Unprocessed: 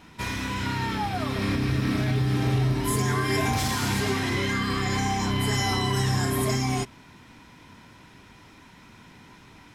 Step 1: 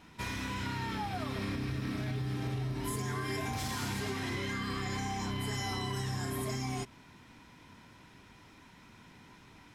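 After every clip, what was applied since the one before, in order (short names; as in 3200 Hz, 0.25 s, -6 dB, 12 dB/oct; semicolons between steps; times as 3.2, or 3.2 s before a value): compressor, threshold -26 dBFS, peak gain reduction 7 dB; gain -6 dB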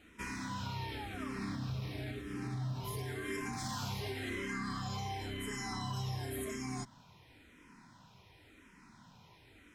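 endless phaser -0.94 Hz; gain -1 dB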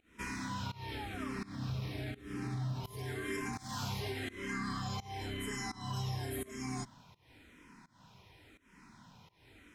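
pump 84 bpm, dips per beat 1, -22 dB, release 0.277 s; gain +1 dB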